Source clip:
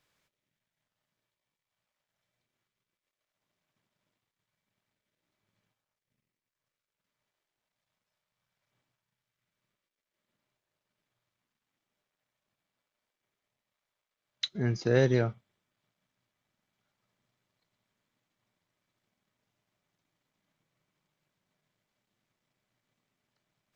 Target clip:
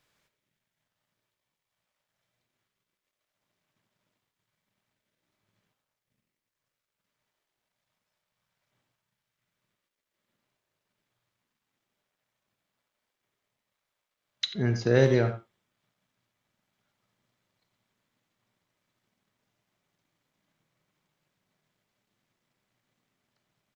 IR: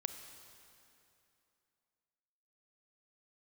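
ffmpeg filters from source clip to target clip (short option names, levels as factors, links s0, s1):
-filter_complex "[0:a]asplit=2[s0][s1];[s1]adelay=90,highpass=300,lowpass=3400,asoftclip=type=hard:threshold=0.1,volume=0.316[s2];[s0][s2]amix=inputs=2:normalize=0[s3];[1:a]atrim=start_sample=2205,atrim=end_sample=3969[s4];[s3][s4]afir=irnorm=-1:irlink=0,volume=1.58"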